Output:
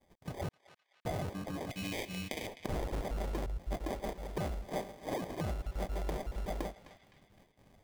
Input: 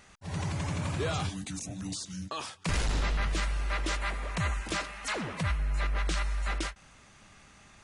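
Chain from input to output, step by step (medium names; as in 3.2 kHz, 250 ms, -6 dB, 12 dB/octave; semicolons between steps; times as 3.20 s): random holes in the spectrogram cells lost 21%; sample-and-hold 32×; dynamic bell 530 Hz, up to +7 dB, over -50 dBFS, Q 0.71; expander -49 dBFS; 0.49–1.05 s: mute; 1.70–2.47 s: resonant high shelf 1.8 kHz +8.5 dB, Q 3; band-passed feedback delay 257 ms, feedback 45%, band-pass 2.7 kHz, level -16.5 dB; compression 2:1, threshold -42 dBFS, peak gain reduction 10 dB; 3.46–5.22 s: three bands expanded up and down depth 100%; trim +1.5 dB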